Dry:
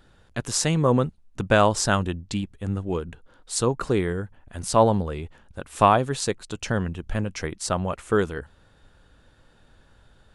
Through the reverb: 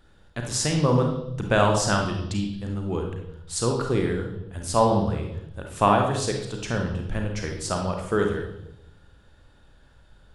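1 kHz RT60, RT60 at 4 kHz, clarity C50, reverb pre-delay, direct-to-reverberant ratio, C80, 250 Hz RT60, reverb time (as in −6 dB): 0.70 s, 0.95 s, 4.0 dB, 33 ms, 2.0 dB, 7.5 dB, 1.1 s, 0.80 s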